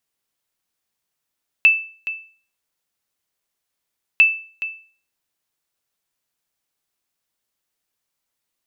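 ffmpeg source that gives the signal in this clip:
-f lavfi -i "aevalsrc='0.562*(sin(2*PI*2640*mod(t,2.55))*exp(-6.91*mod(t,2.55)/0.42)+0.2*sin(2*PI*2640*max(mod(t,2.55)-0.42,0))*exp(-6.91*max(mod(t,2.55)-0.42,0)/0.42))':d=5.1:s=44100"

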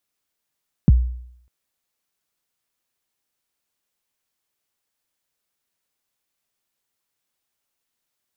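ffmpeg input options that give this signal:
-f lavfi -i "aevalsrc='0.501*pow(10,-3*t/0.69)*sin(2*PI*(230*0.026/log(61/230)*(exp(log(61/230)*min(t,0.026)/0.026)-1)+61*max(t-0.026,0)))':d=0.6:s=44100"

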